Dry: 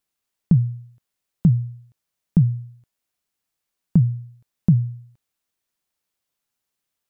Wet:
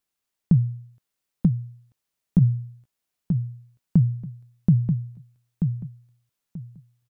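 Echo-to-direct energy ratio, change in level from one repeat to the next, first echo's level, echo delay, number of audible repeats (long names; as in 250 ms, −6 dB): −6.0 dB, −13.0 dB, −6.0 dB, 934 ms, 3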